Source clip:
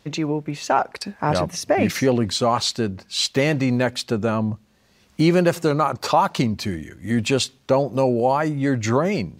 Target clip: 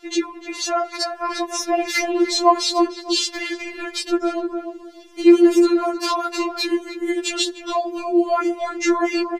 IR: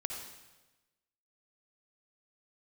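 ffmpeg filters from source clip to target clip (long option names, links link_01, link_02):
-filter_complex "[0:a]highshelf=frequency=12000:gain=-10.5,bandreject=frequency=60:width_type=h:width=6,bandreject=frequency=120:width_type=h:width=6,bandreject=frequency=180:width_type=h:width=6,bandreject=frequency=240:width_type=h:width=6,bandreject=frequency=300:width_type=h:width=6,bandreject=frequency=360:width_type=h:width=6,acompressor=threshold=-25dB:ratio=1.5,alimiter=limit=-17dB:level=0:latency=1:release=18,asplit=2[link_01][link_02];[link_02]adelay=301,lowpass=frequency=930:poles=1,volume=-4.5dB,asplit=2[link_03][link_04];[link_04]adelay=301,lowpass=frequency=930:poles=1,volume=0.26,asplit=2[link_05][link_06];[link_06]adelay=301,lowpass=frequency=930:poles=1,volume=0.26,asplit=2[link_07][link_08];[link_08]adelay=301,lowpass=frequency=930:poles=1,volume=0.26[link_09];[link_01][link_03][link_05][link_07][link_09]amix=inputs=5:normalize=0,afftfilt=real='re*4*eq(mod(b,16),0)':imag='im*4*eq(mod(b,16),0)':win_size=2048:overlap=0.75,volume=9dB"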